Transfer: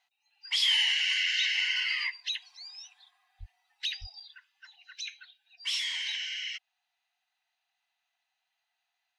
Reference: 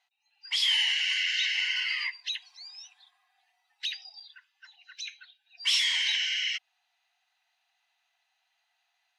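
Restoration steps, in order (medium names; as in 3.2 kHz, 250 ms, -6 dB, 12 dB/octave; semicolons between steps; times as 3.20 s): 3.39–3.51 s: high-pass 140 Hz 24 dB/octave; 4.00–4.12 s: high-pass 140 Hz 24 dB/octave; trim 0 dB, from 5.55 s +6.5 dB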